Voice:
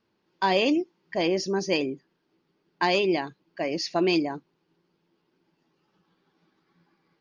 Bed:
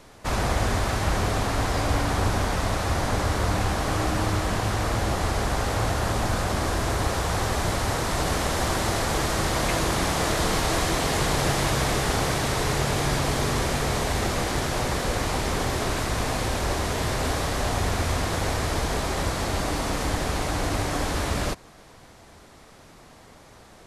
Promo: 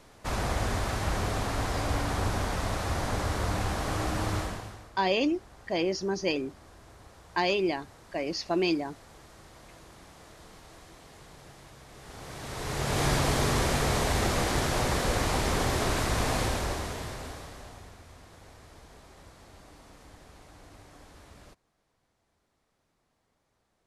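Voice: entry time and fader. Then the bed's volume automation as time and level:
4.55 s, −3.5 dB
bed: 0:04.40 −5.5 dB
0:04.93 −27.5 dB
0:11.87 −27.5 dB
0:13.03 −1.5 dB
0:16.42 −1.5 dB
0:18.02 −26 dB

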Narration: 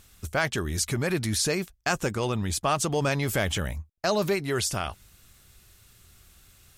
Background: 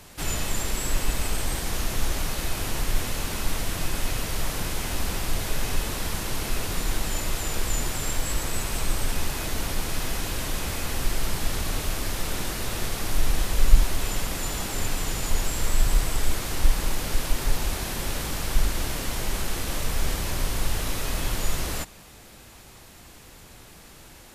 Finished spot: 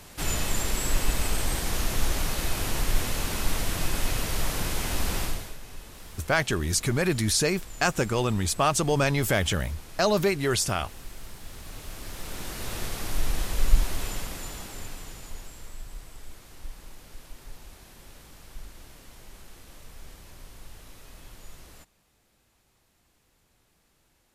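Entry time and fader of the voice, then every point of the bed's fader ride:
5.95 s, +2.0 dB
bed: 0:05.23 0 dB
0:05.59 −16.5 dB
0:11.44 −16.5 dB
0:12.72 −4 dB
0:14.01 −4 dB
0:15.85 −20 dB

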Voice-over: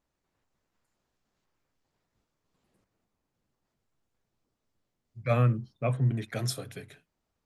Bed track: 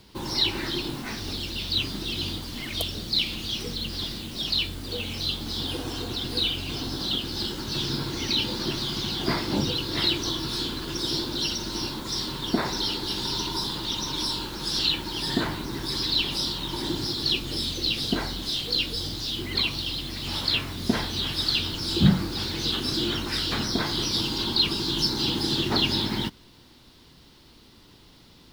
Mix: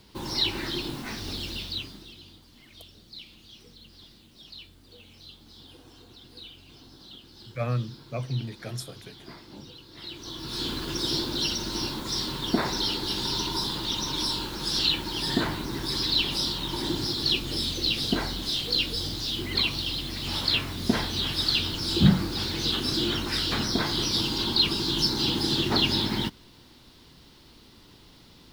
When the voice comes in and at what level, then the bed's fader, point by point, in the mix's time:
2.30 s, −4.0 dB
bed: 0:01.54 −2 dB
0:02.23 −19.5 dB
0:09.96 −19.5 dB
0:10.69 0 dB

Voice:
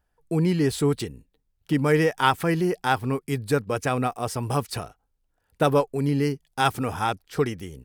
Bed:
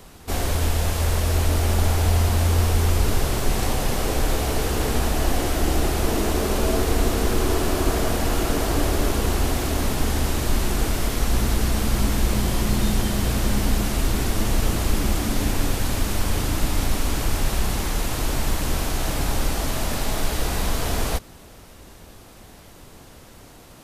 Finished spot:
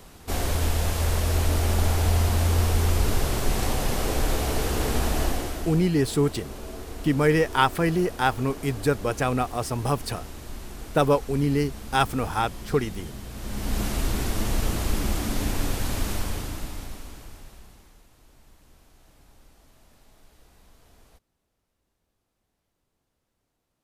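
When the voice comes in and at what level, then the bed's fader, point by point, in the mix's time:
5.35 s, 0.0 dB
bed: 0:05.22 −2.5 dB
0:05.90 −16.5 dB
0:13.30 −16.5 dB
0:13.81 −4 dB
0:16.11 −4 dB
0:18.10 −32.5 dB

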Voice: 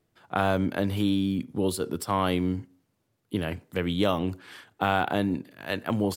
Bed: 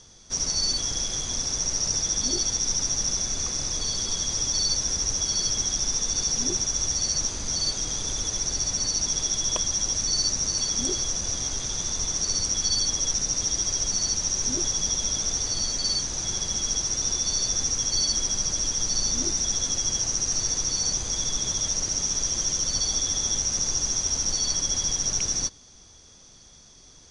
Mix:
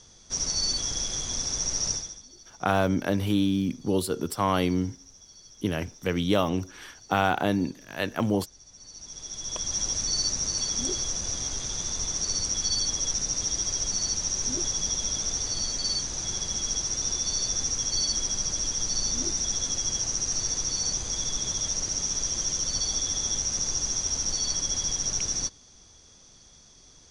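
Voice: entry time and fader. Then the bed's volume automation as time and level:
2.30 s, +1.0 dB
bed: 0:01.91 −2 dB
0:02.27 −25.5 dB
0:08.65 −25.5 dB
0:09.77 −2.5 dB

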